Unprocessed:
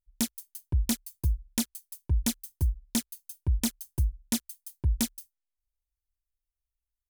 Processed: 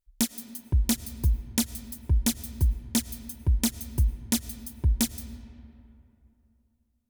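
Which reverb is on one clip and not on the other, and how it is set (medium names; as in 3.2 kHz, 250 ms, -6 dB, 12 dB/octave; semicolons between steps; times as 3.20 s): algorithmic reverb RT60 2.9 s, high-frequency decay 0.5×, pre-delay 65 ms, DRR 14 dB; trim +3 dB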